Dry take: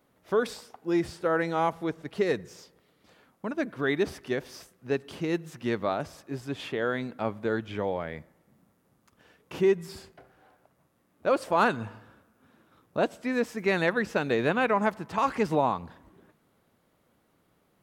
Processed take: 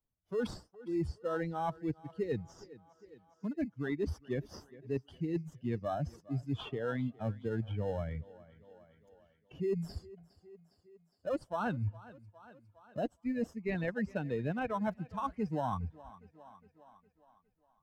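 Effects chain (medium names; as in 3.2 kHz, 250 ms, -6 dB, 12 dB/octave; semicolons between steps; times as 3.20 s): expander on every frequency bin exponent 2; in parallel at -11 dB: sample-and-hold 19×; on the sum: low-pass 1.7 kHz 6 dB/octave; bass shelf 200 Hz +6 dB; reverse; compression 6:1, threshold -41 dBFS, peak gain reduction 22 dB; reverse; peaking EQ 75 Hz +4.5 dB 1.2 oct; thinning echo 410 ms, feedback 45%, high-pass 160 Hz, level -22.5 dB; three bands compressed up and down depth 40%; trim +8 dB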